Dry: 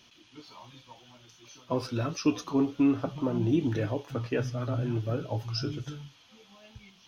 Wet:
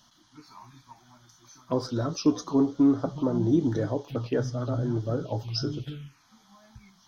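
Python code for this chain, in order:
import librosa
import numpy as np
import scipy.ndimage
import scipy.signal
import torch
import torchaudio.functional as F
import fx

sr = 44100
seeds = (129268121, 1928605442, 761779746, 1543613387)

y = fx.peak_eq(x, sr, hz=90.0, db=-7.5, octaves=0.51)
y = fx.env_phaser(y, sr, low_hz=400.0, high_hz=2600.0, full_db=-29.0)
y = y * librosa.db_to_amplitude(3.5)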